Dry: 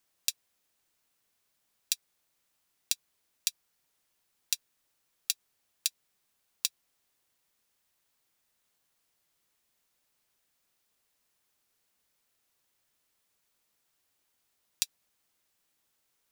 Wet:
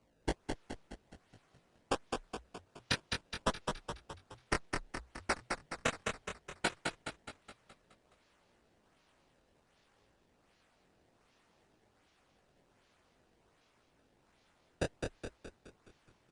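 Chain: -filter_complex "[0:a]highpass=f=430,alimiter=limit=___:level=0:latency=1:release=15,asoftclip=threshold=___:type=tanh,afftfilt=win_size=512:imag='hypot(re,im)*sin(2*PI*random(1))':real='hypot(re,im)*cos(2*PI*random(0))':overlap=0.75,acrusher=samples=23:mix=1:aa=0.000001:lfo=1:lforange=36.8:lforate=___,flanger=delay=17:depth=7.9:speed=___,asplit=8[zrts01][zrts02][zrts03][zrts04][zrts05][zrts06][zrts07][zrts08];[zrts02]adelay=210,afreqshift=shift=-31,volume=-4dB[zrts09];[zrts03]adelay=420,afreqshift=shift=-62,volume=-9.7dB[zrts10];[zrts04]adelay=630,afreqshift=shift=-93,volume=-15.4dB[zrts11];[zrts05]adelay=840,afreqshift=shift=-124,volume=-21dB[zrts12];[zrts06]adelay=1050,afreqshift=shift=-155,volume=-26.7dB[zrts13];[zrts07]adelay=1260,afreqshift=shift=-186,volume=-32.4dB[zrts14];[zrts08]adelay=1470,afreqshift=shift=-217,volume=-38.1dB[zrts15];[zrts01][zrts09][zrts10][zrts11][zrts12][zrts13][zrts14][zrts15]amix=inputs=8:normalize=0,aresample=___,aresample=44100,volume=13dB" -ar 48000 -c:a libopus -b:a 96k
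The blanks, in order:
-9dB, -14dB, 1.3, 0.58, 22050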